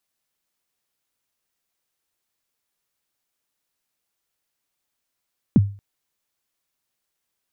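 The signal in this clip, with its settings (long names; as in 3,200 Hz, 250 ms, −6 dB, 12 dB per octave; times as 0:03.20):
synth kick length 0.23 s, from 280 Hz, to 100 Hz, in 32 ms, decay 0.37 s, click off, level −7 dB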